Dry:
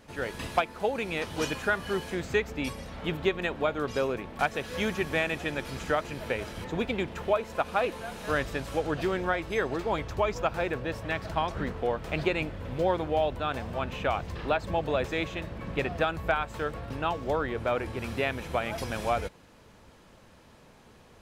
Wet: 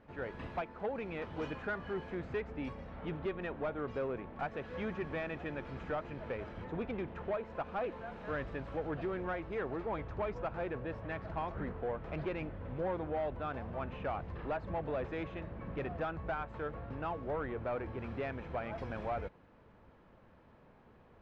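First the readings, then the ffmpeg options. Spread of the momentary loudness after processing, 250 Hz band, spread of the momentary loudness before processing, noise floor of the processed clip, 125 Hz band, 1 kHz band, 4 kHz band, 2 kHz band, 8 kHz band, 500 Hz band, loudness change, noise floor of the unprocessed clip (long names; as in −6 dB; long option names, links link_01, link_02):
4 LU, −7.5 dB, 5 LU, −61 dBFS, −6.5 dB, −9.5 dB, −18.5 dB, −12.0 dB, below −25 dB, −8.5 dB, −9.0 dB, −55 dBFS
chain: -af "asoftclip=type=tanh:threshold=-24.5dB,lowpass=1800,volume=-5.5dB"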